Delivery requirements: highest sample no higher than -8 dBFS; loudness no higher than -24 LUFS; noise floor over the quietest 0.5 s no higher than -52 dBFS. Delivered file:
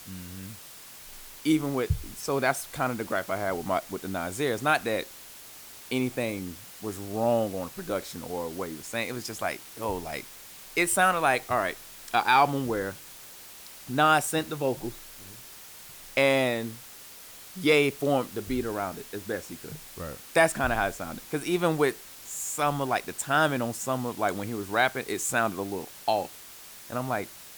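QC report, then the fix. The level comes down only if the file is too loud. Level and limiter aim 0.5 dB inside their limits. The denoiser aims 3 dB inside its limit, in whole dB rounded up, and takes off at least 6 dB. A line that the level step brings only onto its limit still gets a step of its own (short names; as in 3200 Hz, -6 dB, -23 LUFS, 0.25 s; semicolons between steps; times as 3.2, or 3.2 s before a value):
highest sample -10.0 dBFS: OK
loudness -28.0 LUFS: OK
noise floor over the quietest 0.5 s -47 dBFS: fail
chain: denoiser 8 dB, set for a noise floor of -47 dBFS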